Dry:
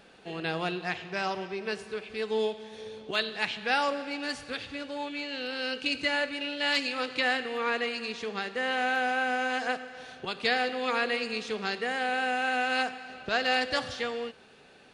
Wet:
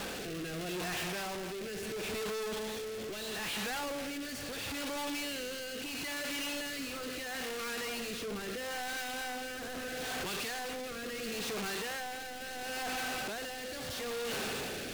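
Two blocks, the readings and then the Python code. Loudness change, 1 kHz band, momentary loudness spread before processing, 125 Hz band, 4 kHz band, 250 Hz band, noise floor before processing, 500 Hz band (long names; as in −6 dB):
−7.0 dB, −10.0 dB, 9 LU, can't be measured, −5.5 dB, −4.5 dB, −55 dBFS, −6.5 dB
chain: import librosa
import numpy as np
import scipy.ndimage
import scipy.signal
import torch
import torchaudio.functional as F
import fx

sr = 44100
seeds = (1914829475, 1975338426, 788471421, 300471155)

y = np.sign(x) * np.sqrt(np.mean(np.square(x)))
y = fx.rotary(y, sr, hz=0.75)
y = y * 10.0 ** (-4.5 / 20.0)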